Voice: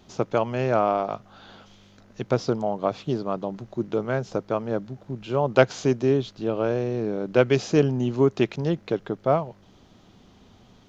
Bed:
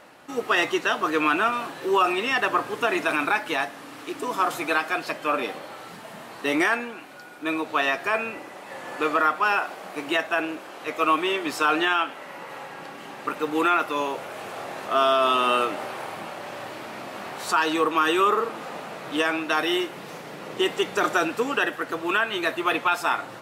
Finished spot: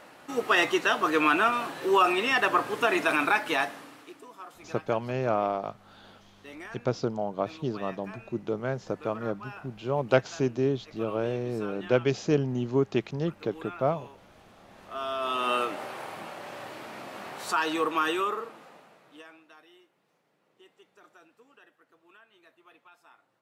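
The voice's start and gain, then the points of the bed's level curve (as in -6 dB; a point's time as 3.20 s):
4.55 s, -5.0 dB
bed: 3.71 s -1 dB
4.33 s -21.5 dB
14.60 s -21.5 dB
15.52 s -5 dB
18.04 s -5 dB
19.72 s -34 dB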